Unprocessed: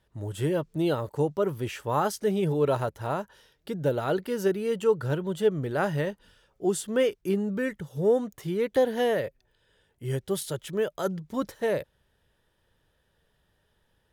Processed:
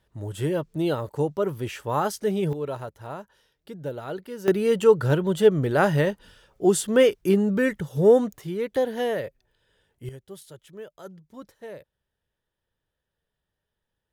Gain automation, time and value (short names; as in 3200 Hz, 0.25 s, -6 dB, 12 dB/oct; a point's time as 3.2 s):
+1 dB
from 2.53 s -6.5 dB
from 4.48 s +6.5 dB
from 8.38 s -1 dB
from 10.09 s -13 dB